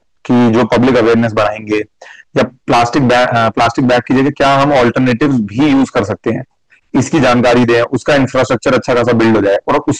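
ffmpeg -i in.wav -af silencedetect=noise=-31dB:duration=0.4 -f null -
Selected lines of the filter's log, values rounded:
silence_start: 6.43
silence_end: 6.94 | silence_duration: 0.50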